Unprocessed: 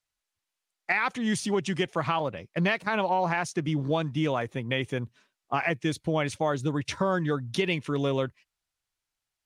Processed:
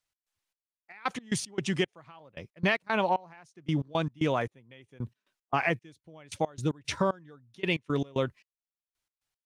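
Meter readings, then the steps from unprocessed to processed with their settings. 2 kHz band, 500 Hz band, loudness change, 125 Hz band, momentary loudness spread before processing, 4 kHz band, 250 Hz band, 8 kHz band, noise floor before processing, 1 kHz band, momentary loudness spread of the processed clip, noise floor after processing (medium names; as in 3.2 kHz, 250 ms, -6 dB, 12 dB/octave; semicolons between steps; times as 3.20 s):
-3.5 dB, -3.5 dB, -3.0 dB, -4.0 dB, 5 LU, -3.0 dB, -4.0 dB, -2.0 dB, under -85 dBFS, -3.5 dB, 14 LU, under -85 dBFS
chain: trance gate "x.xx....x." 114 bpm -24 dB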